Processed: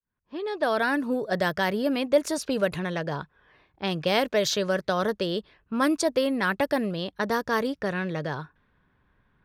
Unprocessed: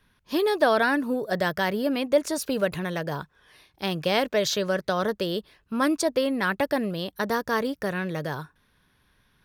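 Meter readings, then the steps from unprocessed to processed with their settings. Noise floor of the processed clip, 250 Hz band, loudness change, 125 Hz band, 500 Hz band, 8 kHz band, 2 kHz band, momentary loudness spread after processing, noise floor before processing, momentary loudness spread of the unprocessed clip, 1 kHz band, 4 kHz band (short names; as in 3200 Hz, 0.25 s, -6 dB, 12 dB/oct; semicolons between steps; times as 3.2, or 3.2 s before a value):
-70 dBFS, -0.5 dB, -0.5 dB, 0.0 dB, -1.0 dB, -0.5 dB, -1.0 dB, 10 LU, -67 dBFS, 9 LU, -1.0 dB, -0.5 dB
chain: opening faded in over 1.13 s; low-pass opened by the level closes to 1600 Hz, open at -20.5 dBFS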